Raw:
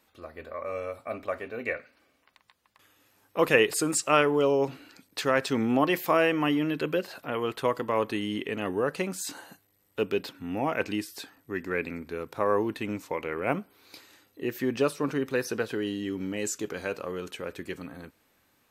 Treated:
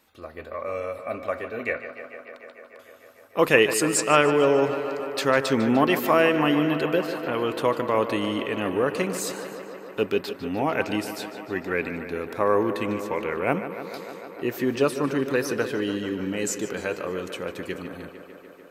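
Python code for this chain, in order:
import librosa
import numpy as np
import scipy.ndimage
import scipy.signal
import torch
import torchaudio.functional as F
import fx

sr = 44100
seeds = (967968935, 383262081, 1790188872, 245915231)

y = fx.echo_tape(x, sr, ms=149, feedback_pct=87, wet_db=-11.0, lp_hz=4700.0, drive_db=2.0, wow_cents=15)
y = y * librosa.db_to_amplitude(3.5)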